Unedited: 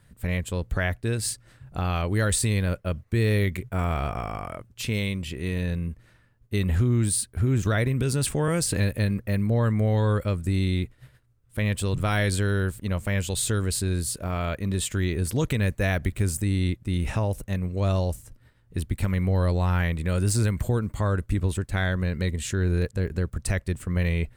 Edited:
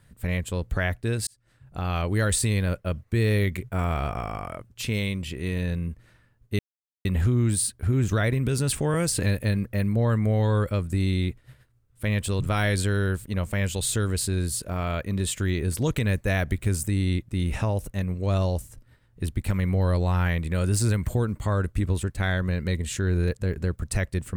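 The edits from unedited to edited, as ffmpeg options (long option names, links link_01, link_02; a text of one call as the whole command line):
ffmpeg -i in.wav -filter_complex "[0:a]asplit=3[link_01][link_02][link_03];[link_01]atrim=end=1.27,asetpts=PTS-STARTPTS,afade=type=out:start_time=1.266:duration=0.004:curve=hsin[link_04];[link_02]atrim=start=1.27:end=6.59,asetpts=PTS-STARTPTS,afade=type=in:duration=0.72,afade=type=out:start_time=5.316:duration=0.004:curve=hsin,apad=pad_dur=0.46[link_05];[link_03]atrim=start=6.59,asetpts=PTS-STARTPTS,afade=type=in:duration=0.004:curve=hsin[link_06];[link_04][link_05][link_06]concat=n=3:v=0:a=1" out.wav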